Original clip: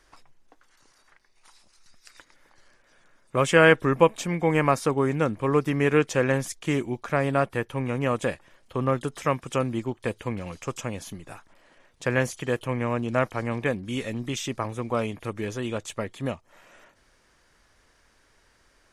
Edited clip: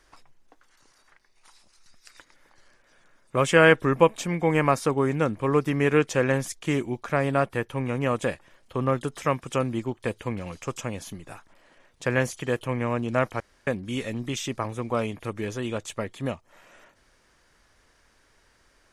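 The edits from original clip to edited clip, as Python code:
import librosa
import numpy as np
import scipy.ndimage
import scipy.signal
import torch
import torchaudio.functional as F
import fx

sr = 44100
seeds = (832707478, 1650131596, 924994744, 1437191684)

y = fx.edit(x, sr, fx.room_tone_fill(start_s=13.4, length_s=0.27), tone=tone)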